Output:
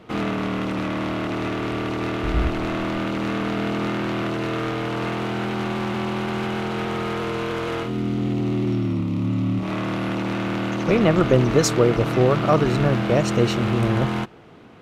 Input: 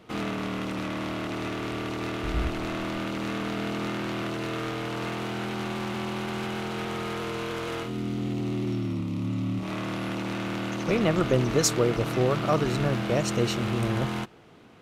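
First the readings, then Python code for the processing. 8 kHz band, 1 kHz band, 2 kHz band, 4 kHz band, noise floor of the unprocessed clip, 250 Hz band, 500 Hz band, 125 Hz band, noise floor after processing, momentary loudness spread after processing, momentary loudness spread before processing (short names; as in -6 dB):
0.0 dB, +6.0 dB, +5.0 dB, +3.0 dB, -33 dBFS, +6.5 dB, +6.5 dB, +6.5 dB, -27 dBFS, 8 LU, 8 LU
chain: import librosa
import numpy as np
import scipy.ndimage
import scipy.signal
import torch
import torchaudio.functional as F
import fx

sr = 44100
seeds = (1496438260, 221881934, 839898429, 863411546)

y = fx.high_shelf(x, sr, hz=4200.0, db=-9.0)
y = y * librosa.db_to_amplitude(6.5)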